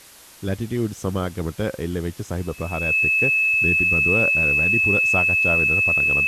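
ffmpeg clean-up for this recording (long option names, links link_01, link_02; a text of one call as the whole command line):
ffmpeg -i in.wav -af "adeclick=threshold=4,bandreject=frequency=2600:width=30,afwtdn=0.0056" out.wav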